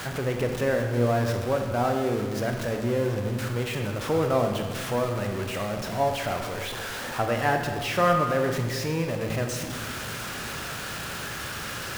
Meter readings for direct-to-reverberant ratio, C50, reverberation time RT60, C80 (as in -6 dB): 3.5 dB, 5.0 dB, 1.6 s, 6.5 dB